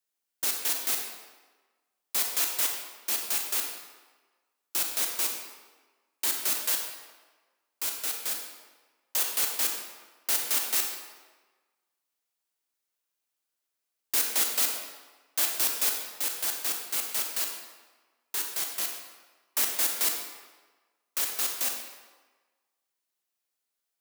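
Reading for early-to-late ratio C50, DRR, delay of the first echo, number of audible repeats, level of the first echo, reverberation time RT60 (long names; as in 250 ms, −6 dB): 3.5 dB, 2.0 dB, no echo audible, no echo audible, no echo audible, 1.4 s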